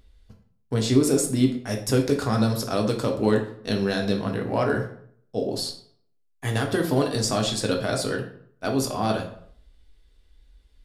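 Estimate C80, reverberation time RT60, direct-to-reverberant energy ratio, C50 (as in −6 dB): 12.5 dB, 0.65 s, 1.5 dB, 8.0 dB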